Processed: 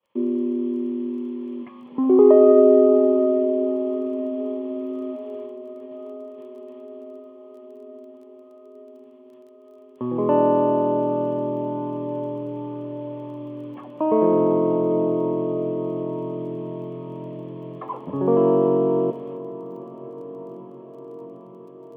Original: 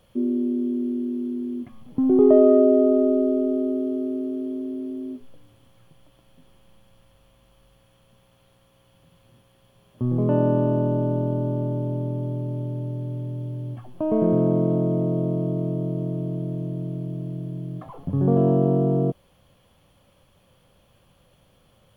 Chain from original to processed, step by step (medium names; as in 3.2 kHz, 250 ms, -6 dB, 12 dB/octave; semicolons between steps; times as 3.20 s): expander -47 dBFS; cabinet simulation 450–2800 Hz, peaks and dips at 690 Hz -10 dB, 1 kHz +7 dB, 1.5 kHz -10 dB; crackle 17 per s -57 dBFS; echo that smears into a reverb 858 ms, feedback 71%, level -16 dB; loudness maximiser +13 dB; trim -3.5 dB